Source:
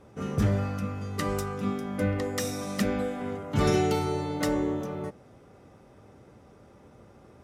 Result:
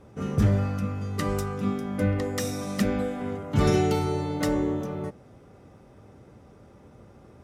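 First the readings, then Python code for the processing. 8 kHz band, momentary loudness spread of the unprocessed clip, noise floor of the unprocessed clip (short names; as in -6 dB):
0.0 dB, 8 LU, -55 dBFS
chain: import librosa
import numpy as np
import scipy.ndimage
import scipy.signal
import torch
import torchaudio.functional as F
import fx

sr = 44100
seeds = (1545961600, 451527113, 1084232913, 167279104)

y = fx.low_shelf(x, sr, hz=260.0, db=4.5)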